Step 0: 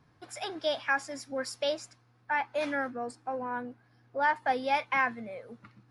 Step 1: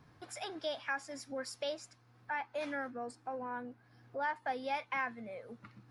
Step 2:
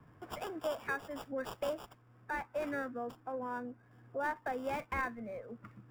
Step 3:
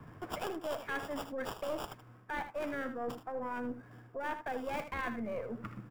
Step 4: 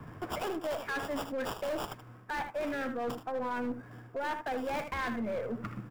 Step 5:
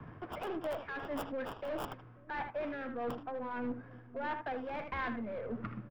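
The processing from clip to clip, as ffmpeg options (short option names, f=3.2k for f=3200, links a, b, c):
-af "acompressor=threshold=-56dB:ratio=1.5,volume=2.5dB"
-filter_complex "[0:a]equalizer=f=820:w=5.4:g=-6,acrossover=split=230|460|2200[a][b][c][d];[d]acrusher=samples=21:mix=1:aa=0.000001[e];[a][b][c][e]amix=inputs=4:normalize=0,volume=2.5dB"
-af "areverse,acompressor=threshold=-44dB:ratio=6,areverse,aeval=exprs='0.0168*(cos(1*acos(clip(val(0)/0.0168,-1,1)))-cos(1*PI/2))+0.00473*(cos(2*acos(clip(val(0)/0.0168,-1,1)))-cos(2*PI/2))':c=same,aecho=1:1:78:0.299,volume=8.5dB"
-af "asoftclip=type=hard:threshold=-35dB,volume=5dB"
-filter_complex "[0:a]tremolo=f=1.6:d=0.4,acrossover=split=400|3900[a][b][c];[a]aecho=1:1:541:0.299[d];[c]acrusher=bits=5:mix=0:aa=0.5[e];[d][b][e]amix=inputs=3:normalize=0,volume=-2dB"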